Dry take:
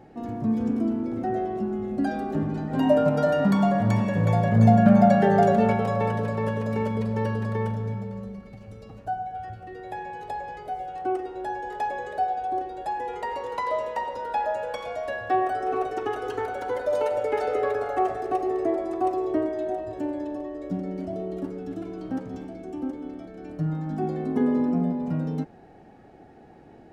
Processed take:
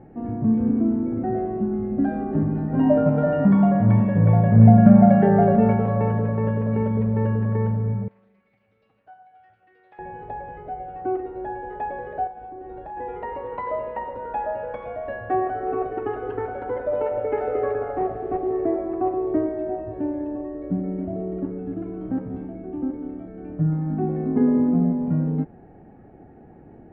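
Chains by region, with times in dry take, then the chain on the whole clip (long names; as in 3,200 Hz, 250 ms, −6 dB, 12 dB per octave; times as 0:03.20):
0:08.08–0:09.99: resonant band-pass 5,000 Hz, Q 1.1 + high-shelf EQ 4,700 Hz +9 dB + highs frequency-modulated by the lows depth 0.2 ms
0:12.27–0:12.97: downward compressor 10 to 1, threshold −33 dBFS + double-tracking delay 37 ms −7.5 dB
0:17.92–0:18.53: linear delta modulator 32 kbit/s, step −37.5 dBFS + high-shelf EQ 2,300 Hz −11.5 dB
whole clip: low-pass filter 2,300 Hz 24 dB per octave; low-shelf EQ 440 Hz +10.5 dB; level −3.5 dB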